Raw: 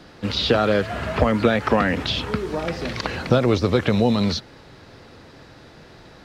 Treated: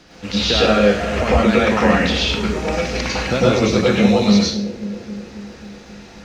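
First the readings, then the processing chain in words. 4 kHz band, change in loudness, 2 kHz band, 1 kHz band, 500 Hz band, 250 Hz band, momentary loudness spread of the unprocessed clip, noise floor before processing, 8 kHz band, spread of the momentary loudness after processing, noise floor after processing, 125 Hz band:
+6.0 dB, +5.0 dB, +6.0 dB, +4.0 dB, +4.5 dB, +6.0 dB, 9 LU, -47 dBFS, +12.0 dB, 15 LU, -41 dBFS, +2.5 dB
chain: fifteen-band EQ 100 Hz -10 dB, 2500 Hz +6 dB, 6300 Hz +10 dB; plate-style reverb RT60 0.51 s, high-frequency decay 0.9×, pre-delay 90 ms, DRR -6 dB; crackle 130/s -46 dBFS; bell 79 Hz +7 dB 1.3 oct; on a send: analogue delay 0.268 s, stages 1024, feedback 67%, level -13 dB; on the sum: gain -4 dB

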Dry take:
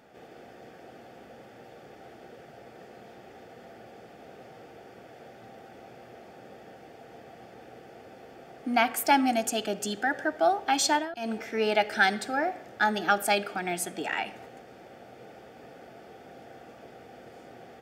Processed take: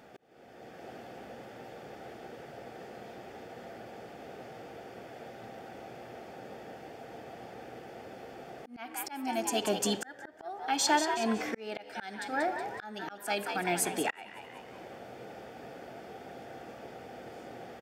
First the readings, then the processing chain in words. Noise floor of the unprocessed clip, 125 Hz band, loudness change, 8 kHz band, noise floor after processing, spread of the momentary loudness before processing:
-51 dBFS, -1.0 dB, -10.0 dB, -1.5 dB, -52 dBFS, 9 LU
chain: frequency-shifting echo 0.185 s, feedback 37%, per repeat +75 Hz, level -11 dB; auto swell 0.728 s; gain +2 dB

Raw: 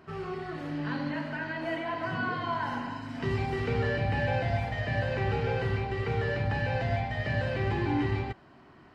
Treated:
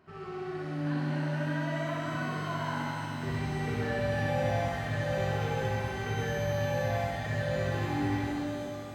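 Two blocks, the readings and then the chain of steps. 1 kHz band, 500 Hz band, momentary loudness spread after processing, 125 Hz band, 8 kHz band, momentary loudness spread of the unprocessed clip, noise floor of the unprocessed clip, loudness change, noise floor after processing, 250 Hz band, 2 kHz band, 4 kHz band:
-1.5 dB, 0.0 dB, 5 LU, -1.5 dB, n/a, 7 LU, -55 dBFS, -1.0 dB, -39 dBFS, +0.5 dB, -2.5 dB, -0.5 dB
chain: on a send: flutter echo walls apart 11.2 m, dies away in 1.4 s; on the sum: shimmer reverb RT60 3.1 s, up +12 st, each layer -8 dB, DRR 1.5 dB; gain -8 dB

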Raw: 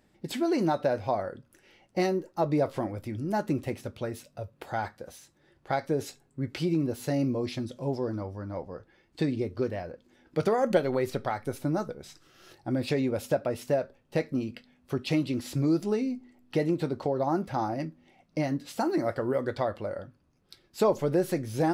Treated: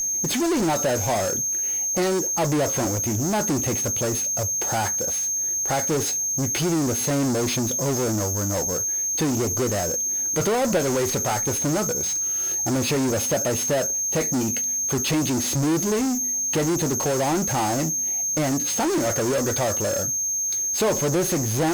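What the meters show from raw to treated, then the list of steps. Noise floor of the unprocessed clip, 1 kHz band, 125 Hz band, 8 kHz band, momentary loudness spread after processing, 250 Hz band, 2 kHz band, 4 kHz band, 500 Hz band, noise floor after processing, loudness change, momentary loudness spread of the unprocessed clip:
-67 dBFS, +5.5 dB, +6.5 dB, +30.5 dB, 1 LU, +5.0 dB, +8.5 dB, +12.5 dB, +4.5 dB, -25 dBFS, +8.0 dB, 12 LU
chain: whine 6400 Hz -38 dBFS; in parallel at -7 dB: fuzz box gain 47 dB, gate -50 dBFS; on the sum: gain -4 dB

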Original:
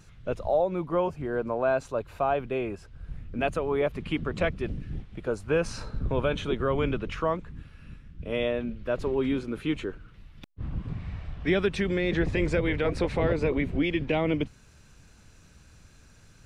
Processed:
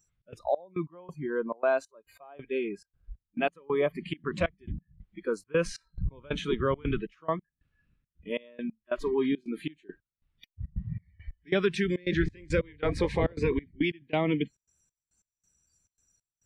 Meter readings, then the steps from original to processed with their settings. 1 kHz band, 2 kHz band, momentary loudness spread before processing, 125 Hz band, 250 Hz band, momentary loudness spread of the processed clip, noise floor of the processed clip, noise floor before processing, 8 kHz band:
-4.0 dB, -2.5 dB, 11 LU, -3.5 dB, -2.5 dB, 13 LU, under -85 dBFS, -55 dBFS, -1.0 dB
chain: spectral noise reduction 26 dB; step gate "xx.xx..x..xx" 138 bpm -24 dB

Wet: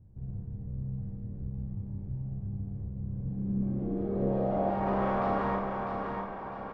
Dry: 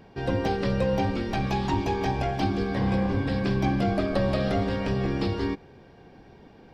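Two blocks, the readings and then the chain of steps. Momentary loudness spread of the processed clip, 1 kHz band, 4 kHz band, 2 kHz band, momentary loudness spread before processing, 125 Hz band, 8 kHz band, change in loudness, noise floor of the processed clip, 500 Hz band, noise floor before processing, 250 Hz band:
11 LU, -3.5 dB, under -20 dB, -10.5 dB, 3 LU, -6.0 dB, n/a, -7.0 dB, -41 dBFS, -6.0 dB, -52 dBFS, -7.0 dB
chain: spectral limiter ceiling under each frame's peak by 18 dB; tube stage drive 39 dB, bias 0.6; low-pass sweep 110 Hz -> 1100 Hz, 3.03–5; feedback echo 0.65 s, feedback 38%, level -5 dB; Schroeder reverb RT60 0.37 s, combs from 30 ms, DRR 0.5 dB; gain +5 dB

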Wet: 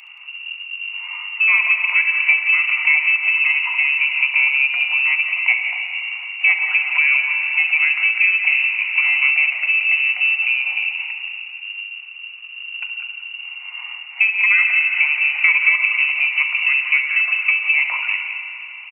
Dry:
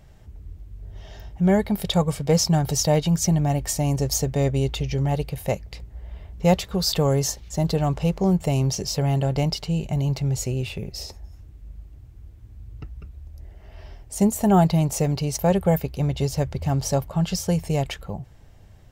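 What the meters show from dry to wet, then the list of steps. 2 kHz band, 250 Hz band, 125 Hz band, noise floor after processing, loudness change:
+28.0 dB, under -40 dB, under -40 dB, -36 dBFS, +8.0 dB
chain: in parallel at -11.5 dB: companded quantiser 4-bit; on the sum: inverted band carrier 2800 Hz; steep high-pass 710 Hz 36 dB/oct; spring tank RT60 3.2 s, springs 32/42 ms, chirp 55 ms, DRR 7.5 dB; compressor 4:1, threshold -22 dBFS, peak gain reduction 10.5 dB; comb 0.9 ms, depth 46%; on a send: tapped delay 68/175 ms -11.5/-11 dB; on the sum: gain +7.5 dB

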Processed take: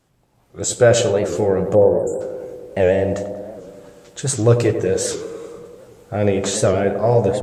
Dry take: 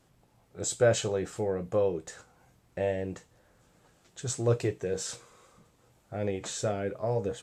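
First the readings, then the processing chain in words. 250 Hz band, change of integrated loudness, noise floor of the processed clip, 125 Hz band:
+13.5 dB, +13.0 dB, -60 dBFS, +13.0 dB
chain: spectral delete 1.75–2.21, 1000–7300 Hz; AGC gain up to 12.5 dB; on a send: tape echo 96 ms, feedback 87%, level -6.5 dB, low-pass 1100 Hz; on the sum: record warp 78 rpm, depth 160 cents; gain +1 dB

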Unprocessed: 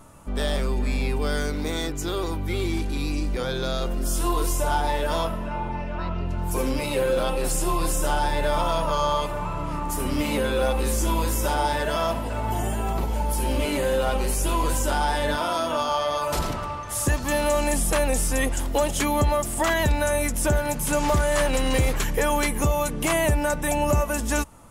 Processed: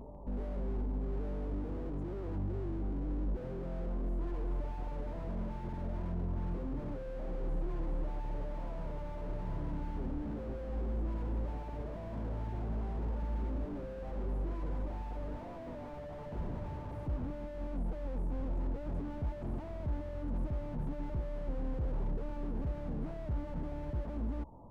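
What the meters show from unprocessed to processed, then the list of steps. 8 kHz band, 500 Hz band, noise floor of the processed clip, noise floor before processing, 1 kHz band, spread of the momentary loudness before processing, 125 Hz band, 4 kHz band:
under -40 dB, -18.5 dB, -44 dBFS, -30 dBFS, -22.5 dB, 6 LU, -10.5 dB, -33.5 dB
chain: elliptic low-pass 970 Hz, stop band 40 dB; limiter -25 dBFS, peak gain reduction 11.5 dB; reverse echo 0.358 s -15.5 dB; slew limiter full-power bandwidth 4.6 Hz; gain -2.5 dB

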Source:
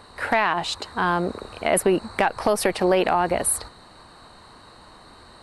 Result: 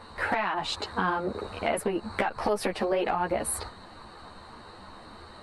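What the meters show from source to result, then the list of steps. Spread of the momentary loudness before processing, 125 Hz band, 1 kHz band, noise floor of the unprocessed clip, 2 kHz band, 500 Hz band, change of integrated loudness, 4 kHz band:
8 LU, -6.5 dB, -6.0 dB, -49 dBFS, -6.0 dB, -7.0 dB, -6.5 dB, -5.0 dB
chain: high shelf 5100 Hz -9 dB; compressor 4:1, threshold -26 dBFS, peak gain reduction 9.5 dB; ensemble effect; gain +4.5 dB

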